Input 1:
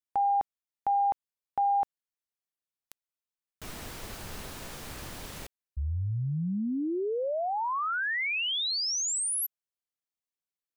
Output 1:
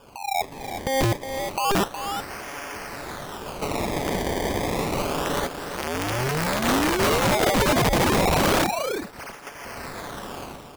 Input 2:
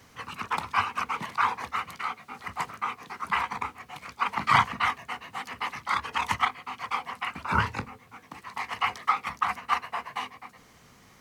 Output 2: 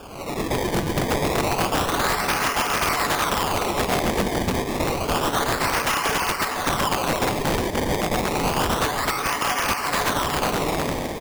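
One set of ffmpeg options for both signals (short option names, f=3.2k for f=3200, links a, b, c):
-af "aeval=exprs='val(0)+0.5*0.0841*sgn(val(0))':c=same,agate=range=-12dB:threshold=-26dB:ratio=3:release=78:detection=rms,highpass=350,aecho=1:1:7:0.5,acompressor=threshold=-26dB:ratio=20:attack=6.6:release=861:knee=1:detection=peak,alimiter=level_in=4dB:limit=-24dB:level=0:latency=1:release=275,volume=-4dB,dynaudnorm=f=100:g=7:m=15dB,aresample=8000,aresample=44100,acrusher=samples=22:mix=1:aa=0.000001:lfo=1:lforange=22:lforate=0.29,aecho=1:1:365:0.355,aeval=exprs='(mod(5.96*val(0)+1,2)-1)/5.96':c=same"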